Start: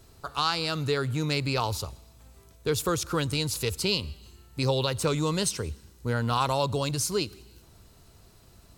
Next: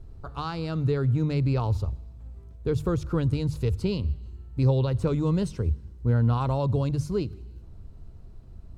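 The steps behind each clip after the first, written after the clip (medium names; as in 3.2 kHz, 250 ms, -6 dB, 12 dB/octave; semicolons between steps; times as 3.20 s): tilt EQ -4.5 dB/octave; hum notches 50/100/150 Hz; trim -5.5 dB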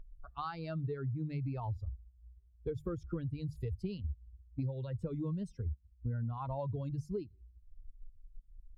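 expander on every frequency bin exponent 2; treble shelf 3.3 kHz -11.5 dB; compression 10:1, threshold -35 dBFS, peak gain reduction 16.5 dB; trim +1 dB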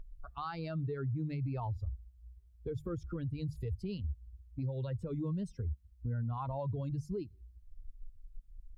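peak limiter -33 dBFS, peak gain reduction 7 dB; trim +3 dB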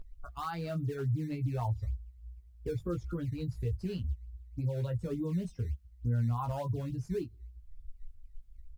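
in parallel at -11.5 dB: decimation with a swept rate 13×, swing 160% 3.4 Hz; on the sum: doubling 17 ms -5 dB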